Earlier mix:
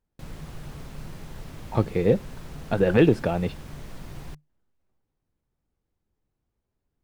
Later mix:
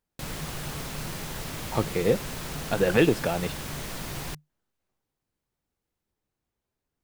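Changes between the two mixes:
background +9.0 dB; master: add tilt +2 dB/oct

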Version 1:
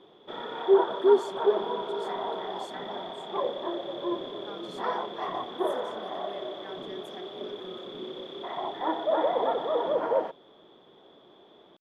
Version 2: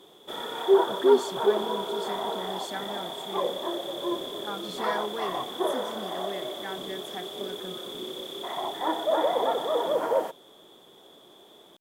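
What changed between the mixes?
speech +9.5 dB; background: remove air absorption 280 m

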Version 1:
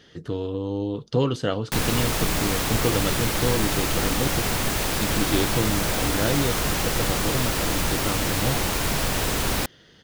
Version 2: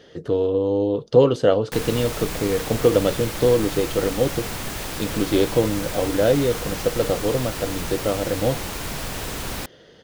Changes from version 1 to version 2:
speech: add bell 530 Hz +11.5 dB 1.2 oct; background -5.5 dB

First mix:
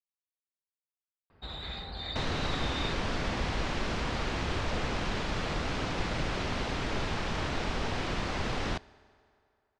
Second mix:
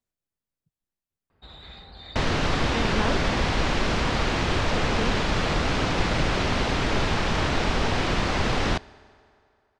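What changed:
speech: unmuted; first sound -5.0 dB; second sound +8.5 dB

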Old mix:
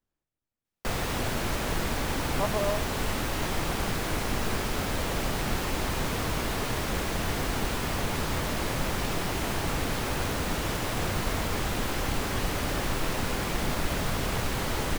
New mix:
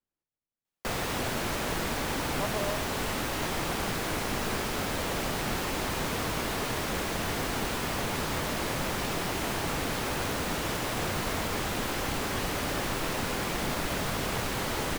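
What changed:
speech -5.5 dB; master: add low shelf 94 Hz -9 dB

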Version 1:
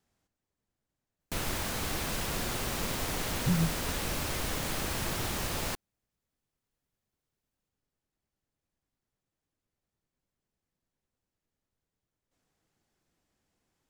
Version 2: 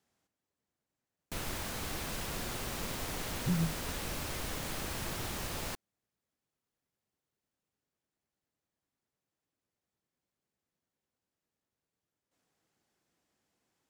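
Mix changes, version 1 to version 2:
speech: add HPF 180 Hz 6 dB/oct; background -5.0 dB

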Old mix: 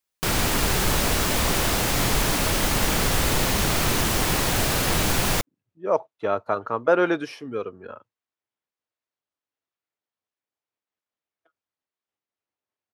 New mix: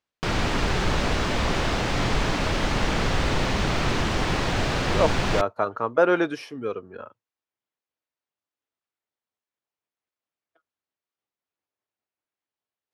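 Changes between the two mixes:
speech: entry -0.90 s; background: add air absorption 140 m

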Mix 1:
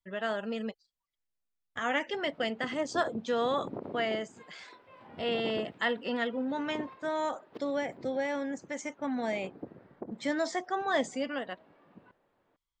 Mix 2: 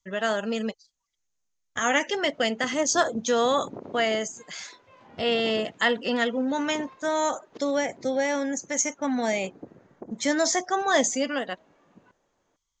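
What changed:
speech +6.5 dB; master: add synth low-pass 6500 Hz, resonance Q 7.3

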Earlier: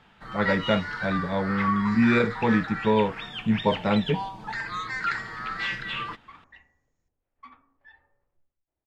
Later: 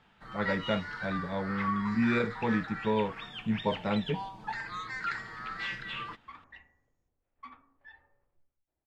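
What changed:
speech -7.0 dB; first sound -6.5 dB

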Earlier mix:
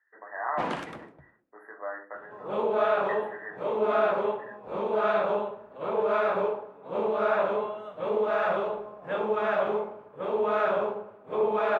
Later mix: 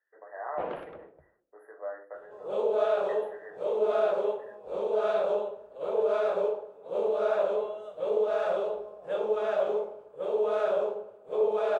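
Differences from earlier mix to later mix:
first sound: add LPF 2400 Hz 24 dB/oct; master: add graphic EQ 125/250/500/1000/2000/8000 Hz -9/-12/+7/-8/-10/+8 dB

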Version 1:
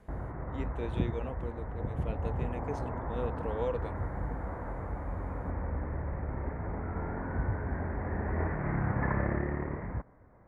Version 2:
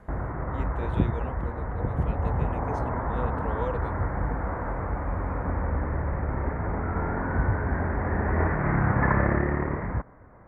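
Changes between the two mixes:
background +7.0 dB; master: add bell 1300 Hz +4 dB 1 oct

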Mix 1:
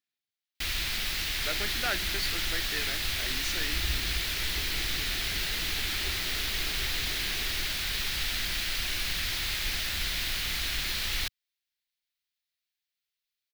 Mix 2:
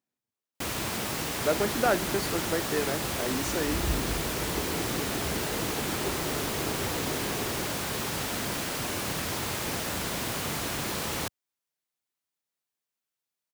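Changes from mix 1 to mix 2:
first sound: add HPF 91 Hz 12 dB/oct; master: add ten-band EQ 125 Hz +10 dB, 250 Hz +9 dB, 500 Hz +12 dB, 1000 Hz +10 dB, 2000 Hz -5 dB, 4000 Hz -8 dB, 8000 Hz +6 dB

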